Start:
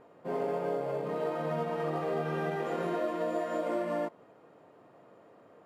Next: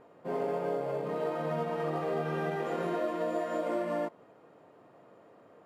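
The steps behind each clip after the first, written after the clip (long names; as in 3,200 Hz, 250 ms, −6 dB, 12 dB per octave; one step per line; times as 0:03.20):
no processing that can be heard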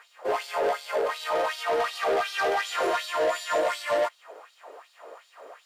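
auto-filter high-pass sine 2.7 Hz 390–4,100 Hz
mid-hump overdrive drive 18 dB, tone 4,100 Hz, clips at −16 dBFS
bass and treble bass −9 dB, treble +13 dB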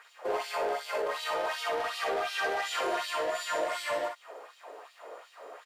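downward compressor, threshold −28 dBFS, peak gain reduction 6.5 dB
on a send: ambience of single reflections 48 ms −6 dB, 62 ms −6 dB
on the sum: level −2 dB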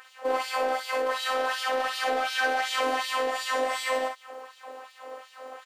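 phases set to zero 260 Hz
level +7 dB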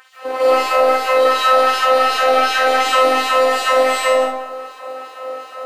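comb and all-pass reverb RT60 0.68 s, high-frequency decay 0.5×, pre-delay 115 ms, DRR −9.5 dB
level +2.5 dB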